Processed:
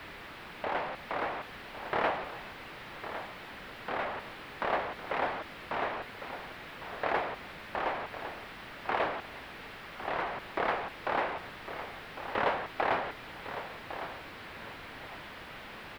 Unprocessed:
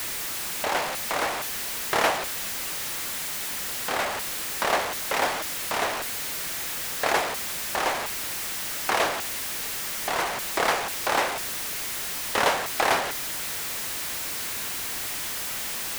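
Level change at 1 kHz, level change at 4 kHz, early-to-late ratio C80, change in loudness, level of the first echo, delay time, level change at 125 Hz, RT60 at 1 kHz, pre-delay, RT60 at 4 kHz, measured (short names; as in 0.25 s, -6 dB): -6.0 dB, -15.0 dB, none, -9.5 dB, -11.0 dB, 1.106 s, -4.5 dB, none, none, none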